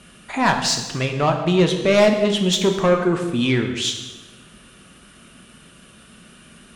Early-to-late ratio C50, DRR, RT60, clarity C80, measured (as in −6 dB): 7.0 dB, 4.0 dB, 1.2 s, 9.0 dB